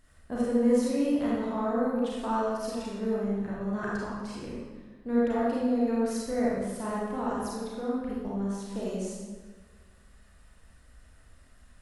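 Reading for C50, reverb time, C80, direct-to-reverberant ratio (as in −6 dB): −3.0 dB, 1.5 s, 0.0 dB, −6.5 dB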